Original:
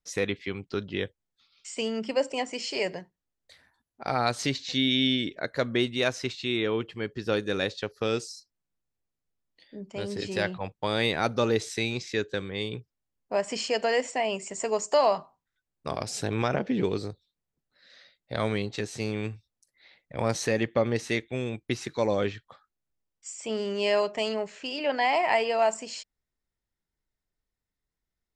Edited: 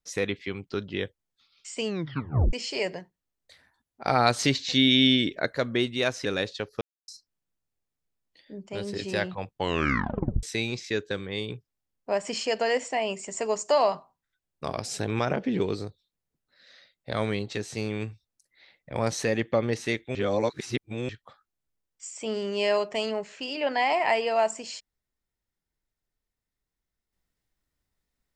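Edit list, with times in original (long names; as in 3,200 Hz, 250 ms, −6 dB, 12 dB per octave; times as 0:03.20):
0:01.85: tape stop 0.68 s
0:04.04–0:05.53: clip gain +4.5 dB
0:06.25–0:07.48: remove
0:08.04–0:08.31: silence
0:10.77: tape stop 0.89 s
0:21.38–0:22.32: reverse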